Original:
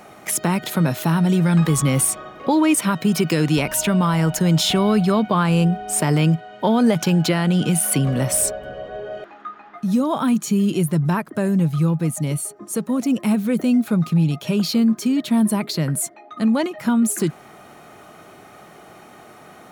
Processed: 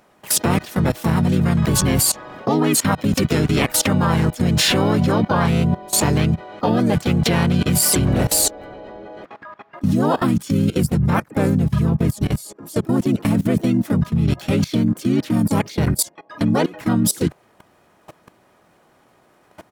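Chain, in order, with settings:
pitch-shifted copies added −12 semitones −5 dB, −4 semitones −3 dB, +5 semitones −5 dB
output level in coarse steps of 20 dB
level +3.5 dB

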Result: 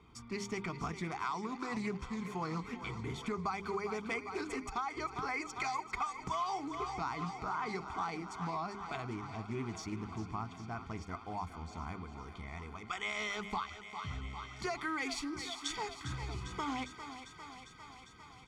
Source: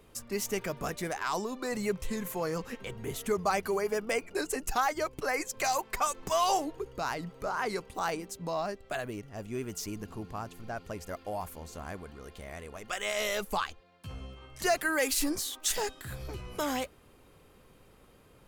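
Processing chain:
high-frequency loss of the air 130 metres
mains-hum notches 50/100/150/200/250/300/350/400 Hz
comb filter 0.9 ms, depth 94%
feedback echo with a high-pass in the loop 401 ms, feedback 75%, high-pass 310 Hz, level −12 dB
downward compressor 6 to 1, threshold −30 dBFS, peak gain reduction 10 dB
high-pass filter 50 Hz
highs frequency-modulated by the lows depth 0.12 ms
level −3 dB

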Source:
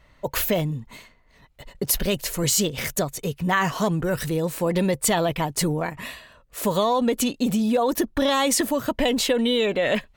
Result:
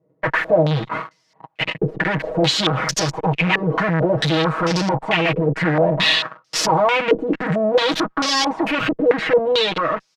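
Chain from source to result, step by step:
fade-out on the ending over 2.45 s
leveller curve on the samples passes 5
bit-depth reduction 12 bits, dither triangular
tube saturation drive 26 dB, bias 0.65
high-pass filter 120 Hz 24 dB per octave
asymmetric clip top −30.5 dBFS, bottom −19.5 dBFS
comb filter 6.3 ms, depth 93%
low-pass on a step sequencer 4.5 Hz 430–5,300 Hz
level +6 dB

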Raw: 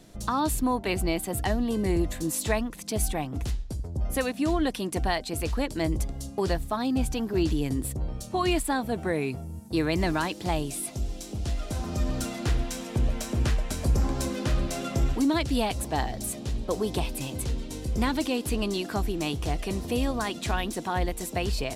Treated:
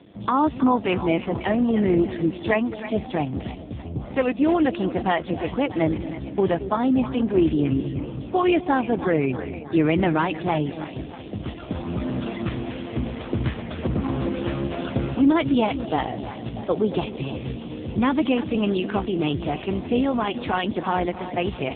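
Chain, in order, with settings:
echo with a time of its own for lows and highs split 610 Hz, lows 227 ms, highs 317 ms, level −11 dB
level +7 dB
AMR narrowband 5.15 kbit/s 8,000 Hz

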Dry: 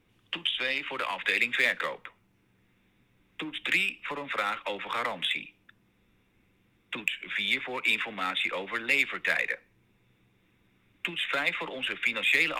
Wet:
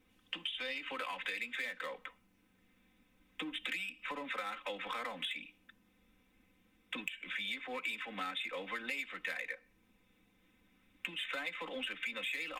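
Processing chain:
high-shelf EQ 5,700 Hz +4.5 dB
comb filter 3.9 ms, depth 76%
downward compressor 6 to 1, threshold −32 dBFS, peak gain reduction 14 dB
level −5 dB

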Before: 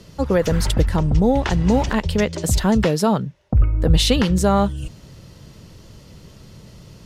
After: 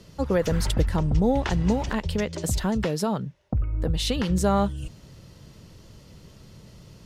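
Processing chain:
0:01.72–0:04.29: downward compressor 5 to 1, threshold −16 dBFS, peak gain reduction 7 dB
level −5 dB

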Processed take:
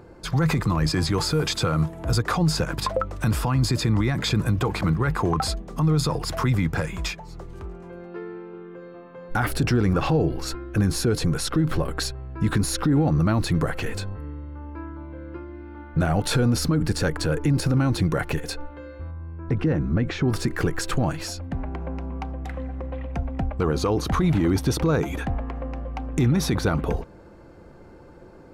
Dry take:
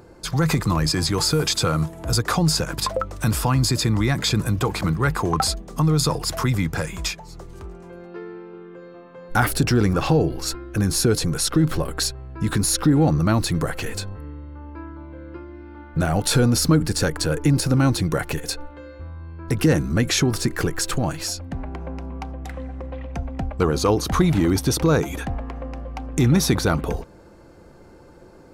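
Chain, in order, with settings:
bass and treble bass +1 dB, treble −8 dB
brickwall limiter −13 dBFS, peak gain reduction 8 dB
0:19.11–0:20.28: head-to-tape spacing loss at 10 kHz 25 dB

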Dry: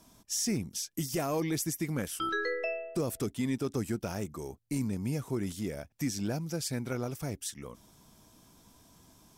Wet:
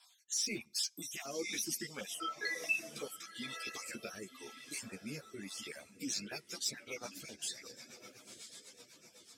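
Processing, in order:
time-frequency cells dropped at random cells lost 39%
low-shelf EQ 290 Hz −11 dB
tuned comb filter 120 Hz, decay 0.49 s, harmonics all, mix 40%
on a send: feedback delay with all-pass diffusion 1,047 ms, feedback 42%, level −9 dB
on the sum: rotating-speaker cabinet horn 1 Hz, later 8 Hz, at 0:05.74
meter weighting curve D
soft clipping −25.5 dBFS, distortion −24 dB
reverb reduction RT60 0.99 s
string-ensemble chorus
level +4.5 dB

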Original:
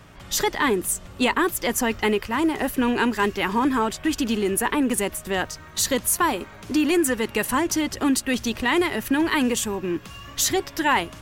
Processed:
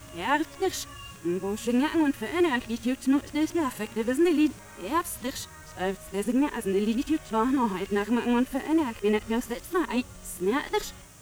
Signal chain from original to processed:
played backwards from end to start
harmonic and percussive parts rebalanced percussive −16 dB
noise in a band 5,500–9,600 Hz −55 dBFS
in parallel at −5 dB: bit-depth reduction 8 bits, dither triangular
on the sum: level −5.5 dB

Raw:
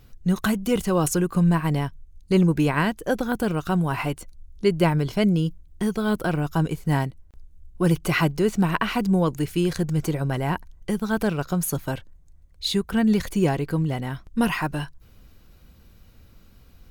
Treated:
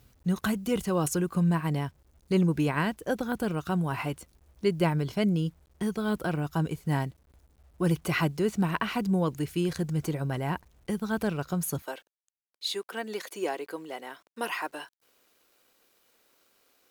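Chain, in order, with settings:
high-pass filter 44 Hz 24 dB per octave, from 0:11.82 360 Hz
bit-depth reduction 10 bits, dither none
level −5.5 dB

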